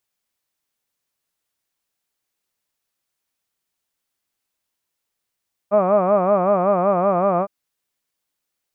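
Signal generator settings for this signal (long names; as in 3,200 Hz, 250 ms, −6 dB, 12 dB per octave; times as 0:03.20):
vowel by formant synthesis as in hud, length 1.76 s, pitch 196 Hz, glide −1 semitone, vibrato depth 1.35 semitones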